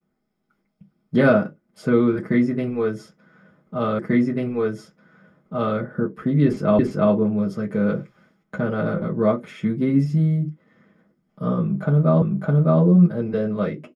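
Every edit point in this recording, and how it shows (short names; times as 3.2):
3.99 repeat of the last 1.79 s
6.79 repeat of the last 0.34 s
12.22 repeat of the last 0.61 s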